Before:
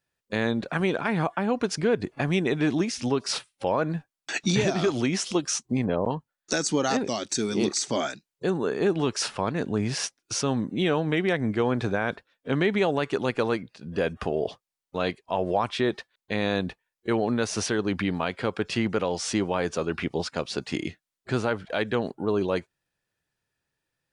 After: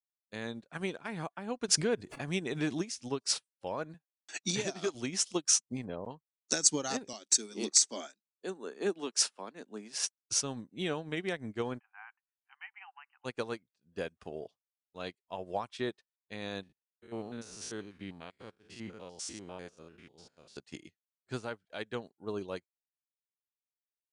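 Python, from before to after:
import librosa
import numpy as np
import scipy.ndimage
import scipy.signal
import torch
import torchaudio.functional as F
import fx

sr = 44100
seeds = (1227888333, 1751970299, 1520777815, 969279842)

y = fx.pre_swell(x, sr, db_per_s=48.0, at=(1.68, 2.98))
y = fx.bessel_highpass(y, sr, hz=180.0, order=2, at=(3.94, 4.95))
y = fx.steep_highpass(y, sr, hz=200.0, slope=36, at=(7.13, 10.04))
y = fx.brickwall_bandpass(y, sr, low_hz=730.0, high_hz=3100.0, at=(11.78, 13.24), fade=0.02)
y = fx.spec_steps(y, sr, hold_ms=100, at=(16.63, 20.57))
y = fx.peak_eq(y, sr, hz=8400.0, db=10.5, octaves=1.7)
y = fx.upward_expand(y, sr, threshold_db=-40.0, expansion=2.5)
y = y * librosa.db_to_amplitude(-2.5)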